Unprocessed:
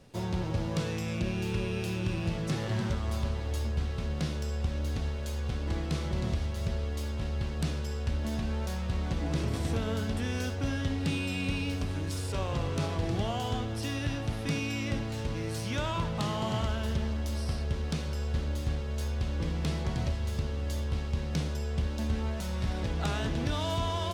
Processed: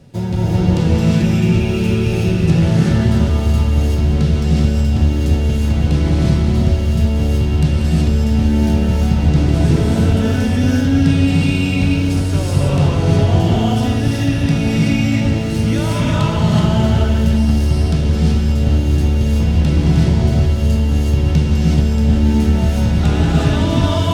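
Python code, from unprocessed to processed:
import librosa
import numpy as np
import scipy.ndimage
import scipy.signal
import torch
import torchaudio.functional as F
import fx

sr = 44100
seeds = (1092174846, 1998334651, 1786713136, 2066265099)

p1 = fx.peak_eq(x, sr, hz=140.0, db=9.5, octaves=2.3)
p2 = fx.notch(p1, sr, hz=1100.0, q=9.7)
p3 = p2 + fx.echo_single(p2, sr, ms=187, db=-11.5, dry=0)
p4 = fx.rev_gated(p3, sr, seeds[0], gate_ms=400, shape='rising', drr_db=-5.0)
y = p4 * librosa.db_to_amplitude(5.5)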